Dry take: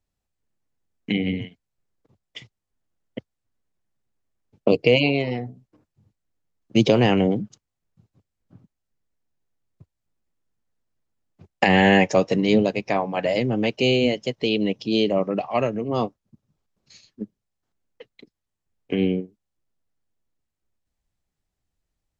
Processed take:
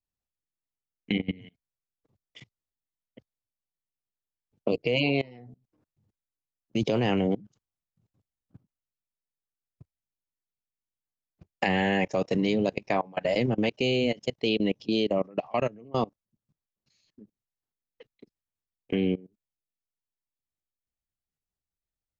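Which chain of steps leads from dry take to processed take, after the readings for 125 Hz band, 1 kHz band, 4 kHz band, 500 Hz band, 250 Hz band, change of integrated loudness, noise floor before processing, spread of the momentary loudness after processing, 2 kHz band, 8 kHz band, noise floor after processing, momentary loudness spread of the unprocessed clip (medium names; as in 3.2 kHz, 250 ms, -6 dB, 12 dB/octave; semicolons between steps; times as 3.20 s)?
-6.5 dB, -7.0 dB, -6.0 dB, -6.5 dB, -6.5 dB, -6.5 dB, -82 dBFS, 7 LU, -7.0 dB, no reading, under -85 dBFS, 21 LU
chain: level held to a coarse grid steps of 23 dB; trim -1.5 dB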